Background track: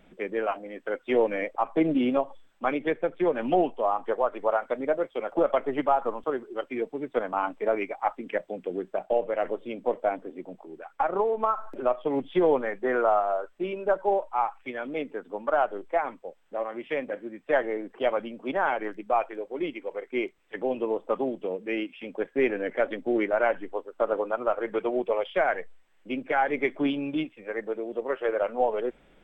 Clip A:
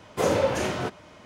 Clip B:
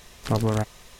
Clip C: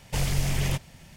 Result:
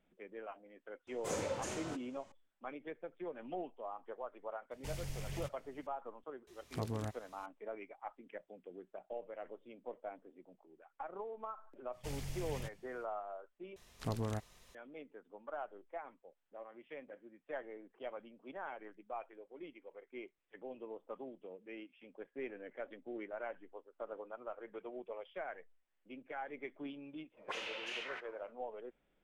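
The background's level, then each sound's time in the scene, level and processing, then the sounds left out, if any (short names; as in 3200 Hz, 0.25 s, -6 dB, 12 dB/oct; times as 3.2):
background track -19.5 dB
1.07 add A -16 dB + bell 7600 Hz +11.5 dB 0.81 oct
4.71 add C -17.5 dB
6.47 add B -16 dB + HPF 46 Hz
11.91 add C -17.5 dB, fades 0.05 s
13.76 replace with B -14.5 dB
27.31 add A -2.5 dB, fades 0.10 s + auto-wah 430–2800 Hz, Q 3.7, up, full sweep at -23 dBFS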